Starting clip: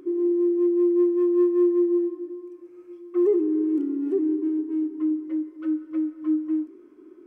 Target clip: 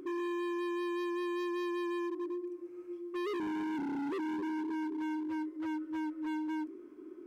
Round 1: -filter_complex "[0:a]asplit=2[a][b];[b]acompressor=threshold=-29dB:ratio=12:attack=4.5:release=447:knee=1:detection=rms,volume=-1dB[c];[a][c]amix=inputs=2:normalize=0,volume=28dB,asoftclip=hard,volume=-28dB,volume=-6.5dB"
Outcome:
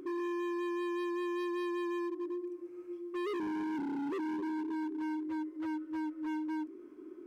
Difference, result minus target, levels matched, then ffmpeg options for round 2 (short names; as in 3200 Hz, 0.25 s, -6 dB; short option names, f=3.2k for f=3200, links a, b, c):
compressor: peak gain reduction +6 dB
-filter_complex "[0:a]asplit=2[a][b];[b]acompressor=threshold=-22.5dB:ratio=12:attack=4.5:release=447:knee=1:detection=rms,volume=-1dB[c];[a][c]amix=inputs=2:normalize=0,volume=28dB,asoftclip=hard,volume=-28dB,volume=-6.5dB"